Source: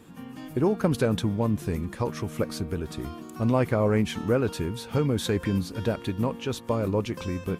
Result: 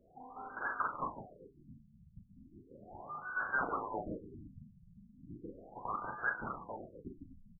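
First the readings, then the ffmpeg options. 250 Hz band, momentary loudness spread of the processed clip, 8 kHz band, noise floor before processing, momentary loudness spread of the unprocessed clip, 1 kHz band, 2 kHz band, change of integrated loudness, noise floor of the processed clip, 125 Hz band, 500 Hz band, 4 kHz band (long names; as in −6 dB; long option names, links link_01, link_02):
−23.0 dB, 23 LU, below −40 dB, −43 dBFS, 9 LU, −4.5 dB, −0.5 dB, −12.5 dB, −64 dBFS, −27.0 dB, −21.5 dB, below −40 dB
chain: -filter_complex "[0:a]equalizer=frequency=1800:width=0.85:gain=-6.5,bandreject=frequency=78.14:width_type=h:width=4,bandreject=frequency=156.28:width_type=h:width=4,bandreject=frequency=234.42:width_type=h:width=4,bandreject=frequency=312.56:width_type=h:width=4,bandreject=frequency=390.7:width_type=h:width=4,bandreject=frequency=468.84:width_type=h:width=4,bandreject=frequency=546.98:width_type=h:width=4,bandreject=frequency=625.12:width_type=h:width=4,bandreject=frequency=703.26:width_type=h:width=4,bandreject=frequency=781.4:width_type=h:width=4,bandreject=frequency=859.54:width_type=h:width=4,acrossover=split=1400[link_01][link_02];[link_01]acompressor=threshold=-34dB:ratio=8[link_03];[link_03][link_02]amix=inputs=2:normalize=0,aecho=1:1:143|286|429:0.237|0.0759|0.0243,asoftclip=type=hard:threshold=-36.5dB,asplit=2[link_04][link_05];[link_05]adelay=38,volume=-6dB[link_06];[link_04][link_06]amix=inputs=2:normalize=0,lowpass=frequency=2200:width_type=q:width=0.5098,lowpass=frequency=2200:width_type=q:width=0.6013,lowpass=frequency=2200:width_type=q:width=0.9,lowpass=frequency=2200:width_type=q:width=2.563,afreqshift=-2600,afftfilt=real='re*lt(b*sr/1024,210*pow(1700/210,0.5+0.5*sin(2*PI*0.36*pts/sr)))':imag='im*lt(b*sr/1024,210*pow(1700/210,0.5+0.5*sin(2*PI*0.36*pts/sr)))':win_size=1024:overlap=0.75,volume=14.5dB"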